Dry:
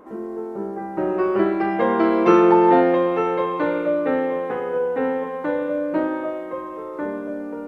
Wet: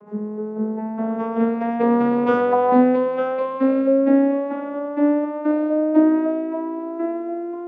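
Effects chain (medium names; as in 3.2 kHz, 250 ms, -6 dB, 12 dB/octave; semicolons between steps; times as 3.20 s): vocoder on a note that slides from G#3, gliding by +9 st; bass shelf 150 Hz +6 dB; trim +1 dB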